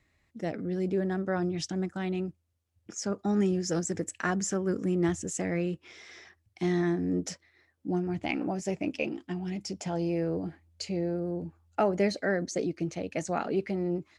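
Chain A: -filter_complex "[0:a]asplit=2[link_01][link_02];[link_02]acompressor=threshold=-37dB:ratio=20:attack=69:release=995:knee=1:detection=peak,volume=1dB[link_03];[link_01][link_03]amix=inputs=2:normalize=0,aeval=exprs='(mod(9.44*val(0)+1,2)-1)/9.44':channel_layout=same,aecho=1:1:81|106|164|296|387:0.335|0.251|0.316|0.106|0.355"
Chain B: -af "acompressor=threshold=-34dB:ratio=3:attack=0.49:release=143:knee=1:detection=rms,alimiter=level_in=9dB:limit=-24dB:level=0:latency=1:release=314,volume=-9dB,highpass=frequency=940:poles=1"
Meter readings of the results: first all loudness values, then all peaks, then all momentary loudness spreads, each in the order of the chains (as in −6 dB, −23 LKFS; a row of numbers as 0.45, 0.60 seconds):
−27.0, −49.0 LKFS; −13.5, −33.0 dBFS; 9, 8 LU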